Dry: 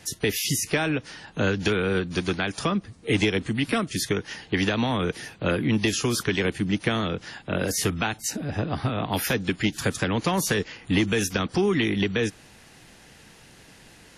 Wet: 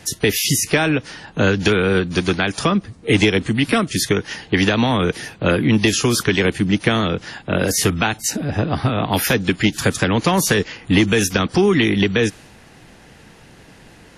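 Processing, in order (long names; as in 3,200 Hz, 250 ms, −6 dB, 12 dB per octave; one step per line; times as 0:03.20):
one half of a high-frequency compander decoder only
level +7.5 dB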